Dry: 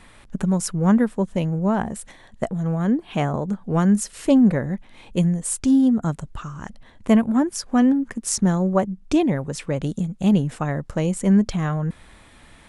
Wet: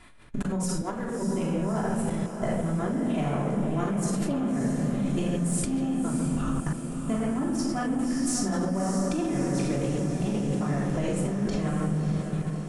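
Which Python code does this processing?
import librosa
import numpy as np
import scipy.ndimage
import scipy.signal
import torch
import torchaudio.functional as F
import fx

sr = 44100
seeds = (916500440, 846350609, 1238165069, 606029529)

y = fx.room_shoebox(x, sr, seeds[0], volume_m3=1100.0, walls='mixed', distance_m=3.1)
y = 10.0 ** (-4.0 / 20.0) * np.tanh(y / 10.0 ** (-4.0 / 20.0))
y = fx.level_steps(y, sr, step_db=24)
y = fx.highpass(y, sr, hz=270.0, slope=24, at=(0.82, 1.22))
y = fx.echo_diffused(y, sr, ms=614, feedback_pct=66, wet_db=-7.5)
y = fx.band_squash(y, sr, depth_pct=40, at=(7.99, 8.65))
y = y * librosa.db_to_amplitude(-3.5)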